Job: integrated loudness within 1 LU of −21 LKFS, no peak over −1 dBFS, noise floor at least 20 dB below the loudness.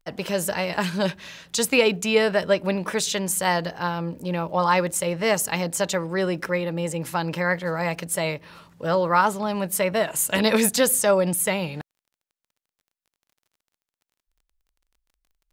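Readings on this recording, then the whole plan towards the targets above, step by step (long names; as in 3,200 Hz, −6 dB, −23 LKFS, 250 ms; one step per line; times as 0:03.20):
crackle rate 26 per second; integrated loudness −23.0 LKFS; sample peak −5.5 dBFS; target loudness −21.0 LKFS
→ click removal
level +2 dB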